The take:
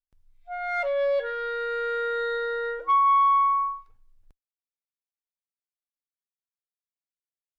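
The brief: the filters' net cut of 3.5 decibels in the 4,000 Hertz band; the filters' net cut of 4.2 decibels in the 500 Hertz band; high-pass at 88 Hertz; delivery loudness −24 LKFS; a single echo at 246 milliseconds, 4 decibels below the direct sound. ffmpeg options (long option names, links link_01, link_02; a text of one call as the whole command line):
ffmpeg -i in.wav -af "highpass=88,equalizer=frequency=500:width_type=o:gain=-4.5,equalizer=frequency=4000:width_type=o:gain=-4,aecho=1:1:246:0.631" out.wav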